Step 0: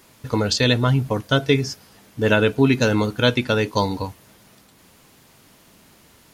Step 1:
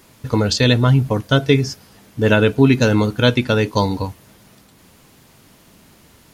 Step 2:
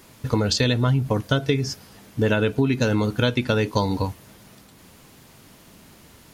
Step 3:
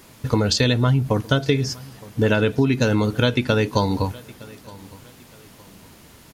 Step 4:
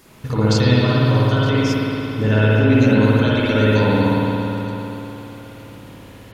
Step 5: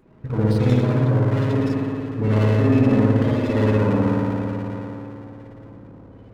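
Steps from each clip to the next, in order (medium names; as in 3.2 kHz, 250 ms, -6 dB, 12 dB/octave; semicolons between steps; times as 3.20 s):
bass shelf 290 Hz +4.5 dB; trim +1.5 dB
compression 6:1, threshold -17 dBFS, peak gain reduction 10 dB
feedback delay 914 ms, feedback 35%, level -22 dB; trim +2 dB
peak limiter -11 dBFS, peak gain reduction 7 dB; spring tank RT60 3.4 s, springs 56 ms, chirp 75 ms, DRR -8.5 dB; trim -3 dB
loudest bins only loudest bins 32; sliding maximum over 17 samples; trim -2.5 dB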